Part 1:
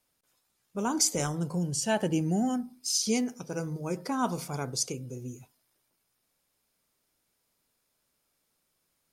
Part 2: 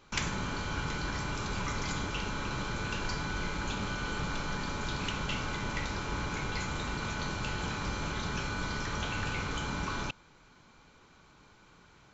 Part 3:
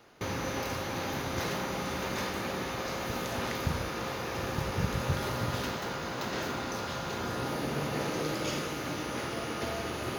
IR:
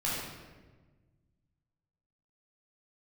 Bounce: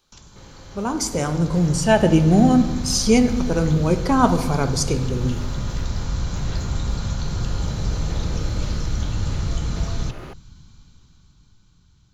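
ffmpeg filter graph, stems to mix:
-filter_complex "[0:a]volume=1.41,asplit=2[s0][s1];[s1]volume=0.168[s2];[1:a]acrossover=split=1200|3000[s3][s4][s5];[s3]acompressor=threshold=0.0141:ratio=4[s6];[s4]acompressor=threshold=0.002:ratio=4[s7];[s5]acompressor=threshold=0.00316:ratio=4[s8];[s6][s7][s8]amix=inputs=3:normalize=0,aexciter=amount=8.5:drive=3.1:freq=3300,asubboost=boost=11.5:cutoff=150,volume=0.282,asplit=2[s9][s10];[s10]volume=0.075[s11];[2:a]adelay=150,volume=0.211[s12];[3:a]atrim=start_sample=2205[s13];[s2][s11]amix=inputs=2:normalize=0[s14];[s14][s13]afir=irnorm=-1:irlink=0[s15];[s0][s9][s12][s15]amix=inputs=4:normalize=0,highshelf=f=4200:g=-10.5,dynaudnorm=f=140:g=21:m=3.55"

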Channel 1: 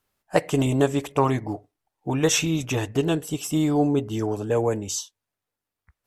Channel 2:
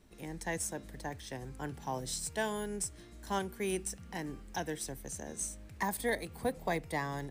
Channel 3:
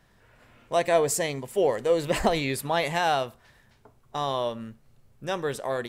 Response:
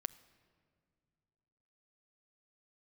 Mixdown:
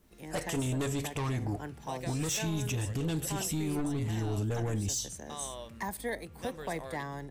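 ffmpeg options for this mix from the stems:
-filter_complex "[0:a]asoftclip=type=tanh:threshold=0.0944,asubboost=boost=4.5:cutoff=220,flanger=delay=9.6:depth=1.3:regen=-84:speed=0.72:shape=triangular,volume=0.891,asplit=2[s0][s1];[s1]volume=0.299[s2];[1:a]adynamicequalizer=threshold=0.00316:dfrequency=2200:dqfactor=0.7:tfrequency=2200:tqfactor=0.7:attack=5:release=100:ratio=0.375:range=2.5:mode=cutabove:tftype=highshelf,volume=0.841[s3];[2:a]acompressor=threshold=0.0562:ratio=6,adelay=1150,volume=0.188[s4];[s0][s4]amix=inputs=2:normalize=0,highshelf=f=2600:g=10,alimiter=limit=0.075:level=0:latency=1:release=138,volume=1[s5];[3:a]atrim=start_sample=2205[s6];[s2][s6]afir=irnorm=-1:irlink=0[s7];[s3][s5][s7]amix=inputs=3:normalize=0,alimiter=level_in=1.12:limit=0.0631:level=0:latency=1:release=43,volume=0.891"

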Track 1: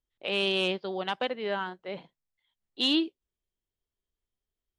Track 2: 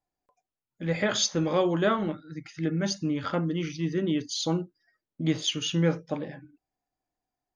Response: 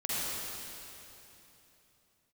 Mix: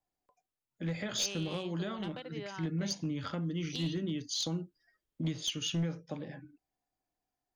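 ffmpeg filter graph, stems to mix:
-filter_complex "[0:a]acompressor=threshold=0.0178:ratio=6,adelay=950,volume=0.75[s0];[1:a]alimiter=limit=0.119:level=0:latency=1:release=364,volume=0.794[s1];[s0][s1]amix=inputs=2:normalize=0,acrossover=split=210|3000[s2][s3][s4];[s3]acompressor=threshold=0.01:ratio=4[s5];[s2][s5][s4]amix=inputs=3:normalize=0,aeval=exprs='clip(val(0),-1,0.0422)':c=same"

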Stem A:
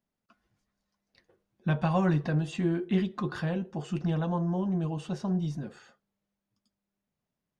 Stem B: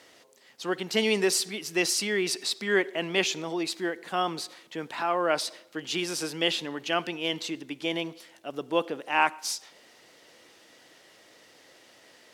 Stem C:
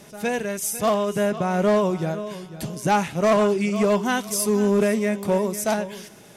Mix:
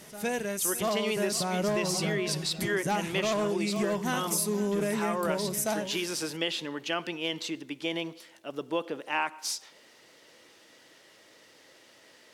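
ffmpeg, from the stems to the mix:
-filter_complex "[0:a]volume=0.376[s0];[1:a]bandreject=f=730:w=12,volume=0.891[s1];[2:a]highshelf=f=6300:g=8,volume=0.531[s2];[s0][s1][s2]amix=inputs=3:normalize=0,acompressor=threshold=0.0562:ratio=6"

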